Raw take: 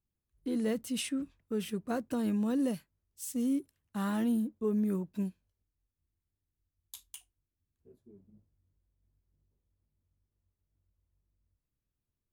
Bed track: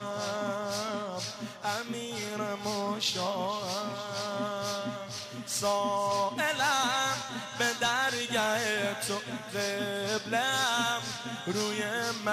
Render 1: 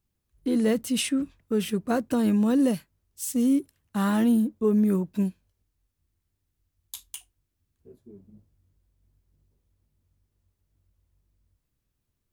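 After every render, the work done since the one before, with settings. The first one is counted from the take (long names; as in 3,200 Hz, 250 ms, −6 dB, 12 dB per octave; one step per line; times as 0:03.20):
level +8.5 dB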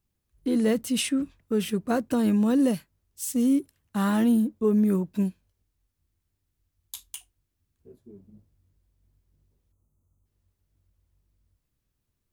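0:09.72–0:10.26: time-frequency box erased 1,400–5,900 Hz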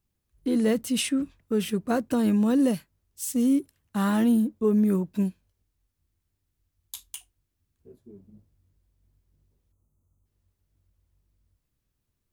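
no processing that can be heard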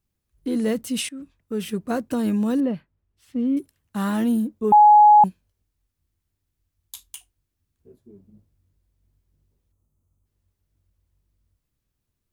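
0:01.09–0:01.74: fade in, from −15 dB
0:02.60–0:03.57: high-frequency loss of the air 400 metres
0:04.72–0:05.24: beep over 839 Hz −8 dBFS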